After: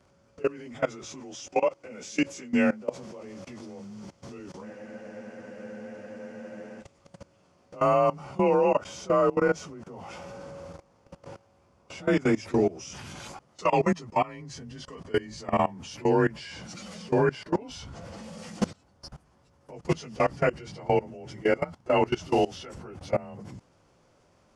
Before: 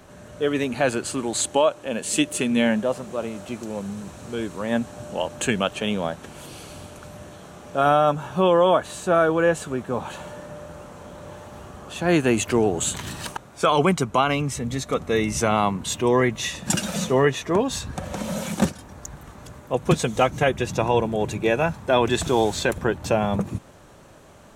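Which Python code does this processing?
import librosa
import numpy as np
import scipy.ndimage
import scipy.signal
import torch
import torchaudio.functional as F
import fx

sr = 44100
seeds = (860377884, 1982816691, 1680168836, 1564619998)

y = fx.partial_stretch(x, sr, pct=92)
y = fx.level_steps(y, sr, step_db=21)
y = fx.spec_freeze(y, sr, seeds[0], at_s=4.67, hold_s=2.15)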